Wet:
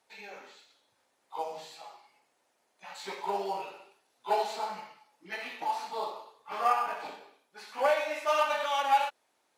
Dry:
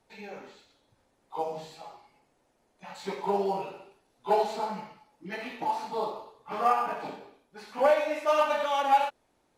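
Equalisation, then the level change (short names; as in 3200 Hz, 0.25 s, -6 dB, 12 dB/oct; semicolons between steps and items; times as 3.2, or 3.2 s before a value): HPF 1100 Hz 6 dB/oct; +2.0 dB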